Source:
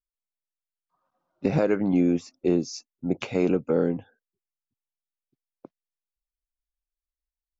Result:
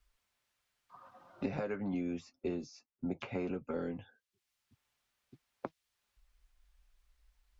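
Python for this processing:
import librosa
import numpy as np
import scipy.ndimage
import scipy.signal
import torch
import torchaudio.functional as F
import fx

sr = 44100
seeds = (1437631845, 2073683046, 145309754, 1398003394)

y = fx.lowpass(x, sr, hz=1800.0, slope=6)
y = fx.peak_eq(y, sr, hz=330.0, db=-10.0, octaves=3.0)
y = fx.notch_comb(y, sr, f0_hz=160.0)
y = fx.band_squash(y, sr, depth_pct=100)
y = F.gain(torch.from_numpy(y), -4.0).numpy()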